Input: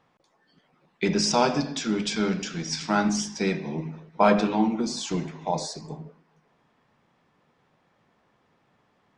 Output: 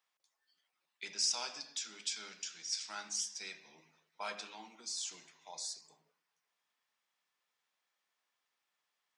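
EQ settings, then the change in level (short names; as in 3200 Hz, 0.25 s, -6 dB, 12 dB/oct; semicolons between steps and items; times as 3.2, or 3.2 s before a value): differentiator; low shelf 430 Hz -5.5 dB; -3.5 dB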